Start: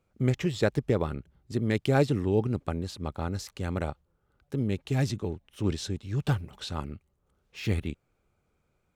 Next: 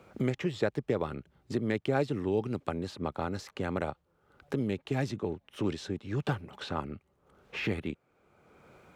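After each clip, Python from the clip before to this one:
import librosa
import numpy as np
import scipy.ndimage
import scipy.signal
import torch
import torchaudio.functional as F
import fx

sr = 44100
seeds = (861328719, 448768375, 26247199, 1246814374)

y = fx.highpass(x, sr, hz=290.0, slope=6)
y = fx.high_shelf(y, sr, hz=4100.0, db=-12.0)
y = fx.band_squash(y, sr, depth_pct=70)
y = F.gain(torch.from_numpy(y), 1.0).numpy()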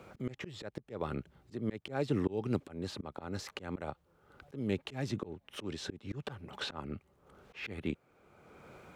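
y = fx.auto_swell(x, sr, attack_ms=290.0)
y = F.gain(torch.from_numpy(y), 3.0).numpy()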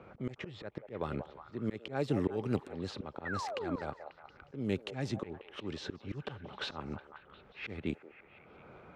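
y = fx.spec_paint(x, sr, seeds[0], shape='fall', start_s=3.25, length_s=0.51, low_hz=240.0, high_hz=2000.0, level_db=-39.0)
y = fx.echo_stepped(y, sr, ms=180, hz=650.0, octaves=0.7, feedback_pct=70, wet_db=-6)
y = fx.env_lowpass(y, sr, base_hz=2100.0, full_db=-29.5)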